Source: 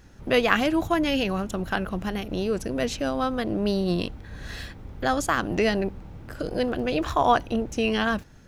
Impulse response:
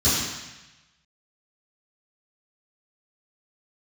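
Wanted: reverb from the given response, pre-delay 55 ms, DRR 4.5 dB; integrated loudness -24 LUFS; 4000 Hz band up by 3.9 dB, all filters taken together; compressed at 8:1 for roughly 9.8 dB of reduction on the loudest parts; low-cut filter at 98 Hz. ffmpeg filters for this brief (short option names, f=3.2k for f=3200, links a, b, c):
-filter_complex "[0:a]highpass=98,equalizer=f=4k:t=o:g=5.5,acompressor=threshold=-24dB:ratio=8,asplit=2[a][b];[1:a]atrim=start_sample=2205,adelay=55[c];[b][c]afir=irnorm=-1:irlink=0,volume=-21dB[d];[a][d]amix=inputs=2:normalize=0,volume=3dB"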